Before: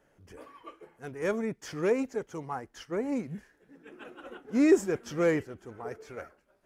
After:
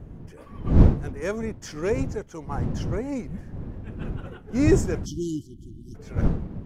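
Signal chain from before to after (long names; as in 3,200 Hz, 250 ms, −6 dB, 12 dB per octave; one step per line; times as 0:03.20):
wind on the microphone 160 Hz −27 dBFS
dynamic equaliser 6,000 Hz, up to +5 dB, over −58 dBFS, Q 1.3
time-frequency box erased 0:05.06–0:05.95, 370–2,900 Hz
level +1 dB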